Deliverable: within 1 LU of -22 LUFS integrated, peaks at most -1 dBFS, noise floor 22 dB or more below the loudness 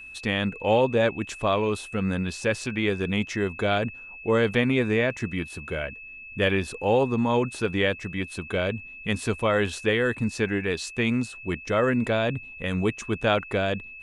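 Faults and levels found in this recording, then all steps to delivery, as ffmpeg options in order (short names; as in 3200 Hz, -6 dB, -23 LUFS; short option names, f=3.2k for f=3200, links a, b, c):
steady tone 2600 Hz; tone level -40 dBFS; loudness -26.0 LUFS; peak -9.5 dBFS; loudness target -22.0 LUFS
-> -af "bandreject=f=2.6k:w=30"
-af "volume=4dB"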